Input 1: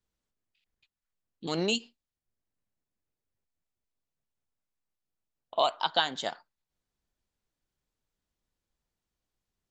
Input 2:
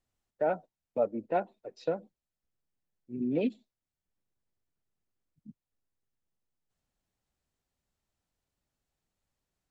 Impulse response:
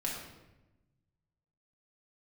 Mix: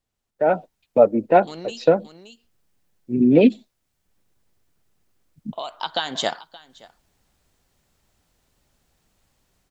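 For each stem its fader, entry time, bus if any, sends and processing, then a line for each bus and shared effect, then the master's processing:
-1.0 dB, 0.00 s, no send, echo send -23.5 dB, compression, threshold -28 dBFS, peak gain reduction 8.5 dB; auto duck -13 dB, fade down 1.70 s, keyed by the second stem
+1.0 dB, 0.00 s, no send, no echo send, level rider gain up to 4 dB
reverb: none
echo: delay 573 ms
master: level rider gain up to 12.5 dB

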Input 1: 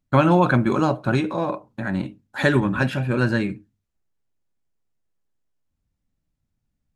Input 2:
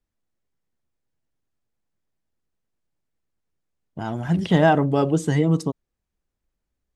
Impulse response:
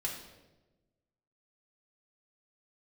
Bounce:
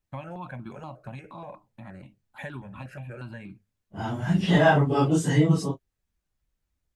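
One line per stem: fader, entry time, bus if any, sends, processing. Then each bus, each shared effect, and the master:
-11.5 dB, 0.00 s, no send, compression 4:1, threshold -20 dBFS, peak gain reduction 8 dB; stepped phaser 8.4 Hz 940–1900 Hz
+1.5 dB, 0.00 s, no send, phase randomisation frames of 100 ms; peaking EQ 400 Hz -5 dB 2.7 oct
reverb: none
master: none

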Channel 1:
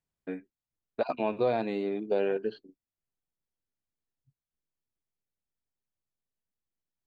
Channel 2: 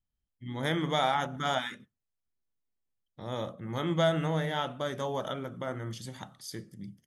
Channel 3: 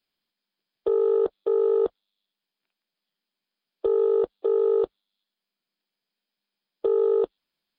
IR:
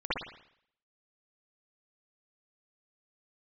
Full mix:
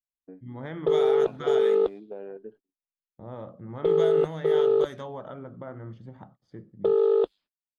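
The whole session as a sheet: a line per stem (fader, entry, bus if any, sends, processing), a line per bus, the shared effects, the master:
-9.0 dB, 0.00 s, bus A, no send, local Wiener filter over 9 samples
-0.5 dB, 0.00 s, bus A, no send, none
0.0 dB, 0.00 s, no bus, no send, peaking EQ 7.2 kHz +12.5 dB 2.1 oct
bus A: 0.0 dB, compression 2:1, threshold -36 dBFS, peak gain reduction 8 dB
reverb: none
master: gate -51 dBFS, range -25 dB; level-controlled noise filter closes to 650 Hz, open at -21 dBFS

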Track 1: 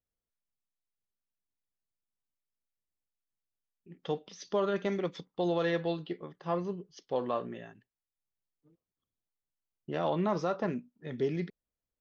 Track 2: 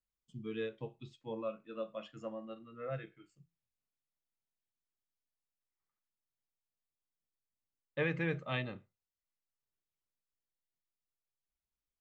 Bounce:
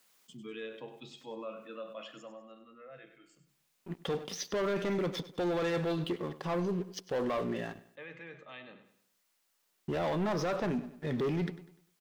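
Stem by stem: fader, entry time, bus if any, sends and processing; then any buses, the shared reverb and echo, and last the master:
-0.5 dB, 0.00 s, no send, echo send -19 dB, waveshaping leveller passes 3
2.01 s -3.5 dB -> 2.54 s -12 dB, 0.00 s, no send, echo send -11 dB, high-pass 160 Hz 24 dB/octave; bass shelf 340 Hz -9 dB; level flattener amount 50%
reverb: none
echo: feedback delay 99 ms, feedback 38%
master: peak limiter -27 dBFS, peak gain reduction 8.5 dB

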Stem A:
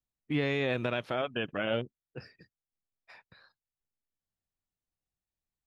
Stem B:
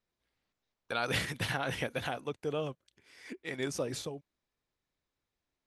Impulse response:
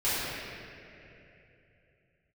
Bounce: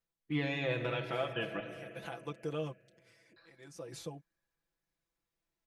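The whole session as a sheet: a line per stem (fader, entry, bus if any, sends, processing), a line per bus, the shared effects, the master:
-7.0 dB, 0.00 s, muted 1.60–3.36 s, send -18 dB, none
-5.0 dB, 0.00 s, no send, peaking EQ 3.6 kHz -2.5 dB; auto duck -21 dB, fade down 0.30 s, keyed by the first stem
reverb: on, RT60 3.0 s, pre-delay 3 ms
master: comb 6 ms, depth 84%

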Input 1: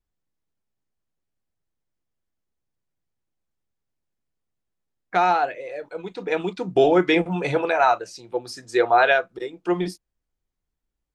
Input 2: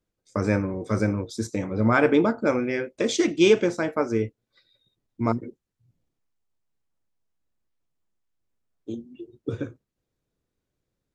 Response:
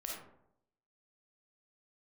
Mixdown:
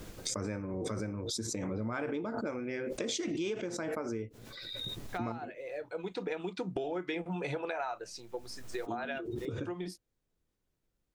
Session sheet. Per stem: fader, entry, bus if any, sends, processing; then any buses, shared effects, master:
-1.5 dB, 0.00 s, no send, compression 2.5:1, threshold -25 dBFS, peak gain reduction 9 dB; auto duck -8 dB, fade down 0.30 s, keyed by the second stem
-5.5 dB, 0.00 s, no send, swell ahead of each attack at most 29 dB/s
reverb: none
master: compression 6:1, threshold -33 dBFS, peak gain reduction 14.5 dB

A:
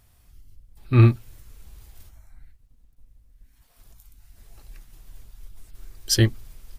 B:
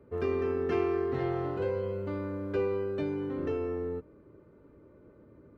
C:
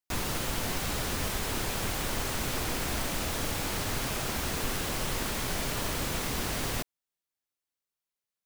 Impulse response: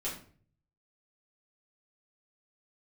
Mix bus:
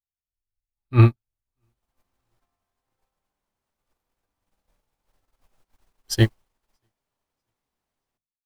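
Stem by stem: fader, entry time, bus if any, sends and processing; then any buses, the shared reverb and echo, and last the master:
-1.5 dB, 0.00 s, no bus, no send, echo send -24 dB, level rider gain up to 8 dB
-2.5 dB, 1.70 s, bus A, no send, no echo send, low-pass 2.2 kHz 24 dB/octave; spectral gate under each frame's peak -10 dB weak
-6.5 dB, 1.35 s, bus A, send -22 dB, no echo send, hum notches 50/100/150/200 Hz
bus A: 0.0 dB, slow attack 728 ms; peak limiter -31.5 dBFS, peak gain reduction 7 dB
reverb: on, RT60 0.45 s, pre-delay 5 ms
echo: feedback delay 637 ms, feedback 50%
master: peaking EQ 860 Hz +6 dB 0.94 oct; upward expansion 2.5:1, over -38 dBFS

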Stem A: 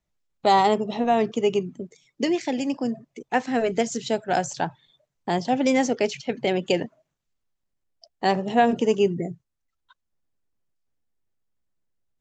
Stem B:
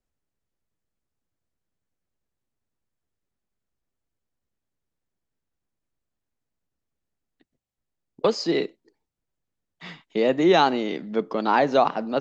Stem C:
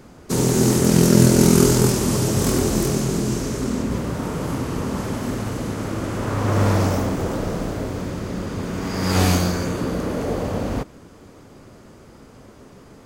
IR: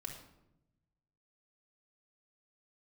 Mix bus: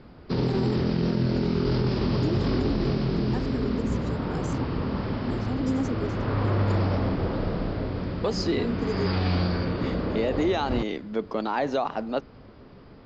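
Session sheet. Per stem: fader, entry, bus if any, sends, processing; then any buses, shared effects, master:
-11.5 dB, 0.00 s, no send, peaking EQ 270 Hz +12.5 dB; rotary cabinet horn 0.85 Hz; static phaser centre 640 Hz, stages 6
-2.0 dB, 0.00 s, no send, none
-4.5 dB, 0.00 s, no send, steep low-pass 5.1 kHz 96 dB/octave; bass shelf 110 Hz +5.5 dB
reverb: none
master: peak limiter -16 dBFS, peak gain reduction 10.5 dB

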